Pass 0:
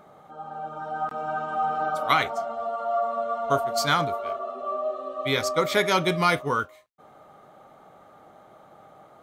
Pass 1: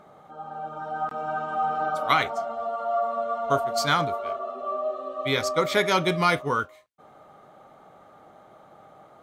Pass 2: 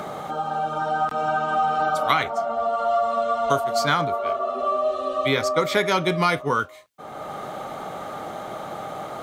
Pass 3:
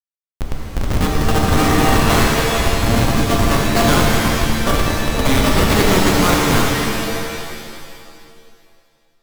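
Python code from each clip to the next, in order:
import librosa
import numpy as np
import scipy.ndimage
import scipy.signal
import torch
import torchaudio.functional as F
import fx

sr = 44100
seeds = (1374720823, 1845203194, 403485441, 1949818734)

y1 = fx.high_shelf(x, sr, hz=12000.0, db=-6.5)
y2 = fx.band_squash(y1, sr, depth_pct=70)
y2 = y2 * librosa.db_to_amplitude(3.5)
y3 = fx.graphic_eq(y2, sr, hz=(250, 500, 1000, 2000, 4000, 8000), db=(11, -4, 4, 4, 10, 4))
y3 = fx.schmitt(y3, sr, flips_db=-14.0)
y3 = fx.rev_shimmer(y3, sr, seeds[0], rt60_s=2.1, semitones=7, shimmer_db=-2, drr_db=-0.5)
y3 = y3 * librosa.db_to_amplitude(4.0)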